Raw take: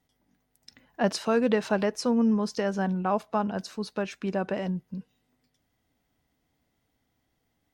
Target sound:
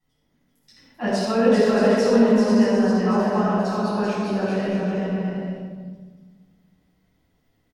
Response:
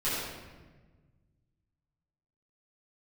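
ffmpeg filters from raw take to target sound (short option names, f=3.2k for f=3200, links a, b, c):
-filter_complex "[0:a]aecho=1:1:390|624|764.4|848.6|899.2:0.631|0.398|0.251|0.158|0.1[a];[1:a]atrim=start_sample=2205[b];[a][b]afir=irnorm=-1:irlink=0,volume=-5.5dB"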